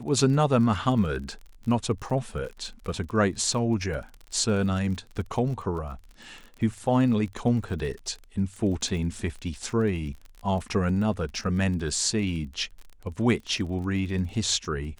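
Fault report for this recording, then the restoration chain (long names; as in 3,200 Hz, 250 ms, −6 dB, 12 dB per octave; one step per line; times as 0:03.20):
surface crackle 31 per second −35 dBFS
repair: click removal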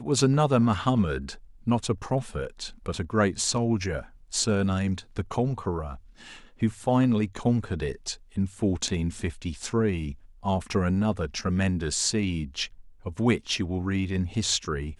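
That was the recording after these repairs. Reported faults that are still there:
none of them is left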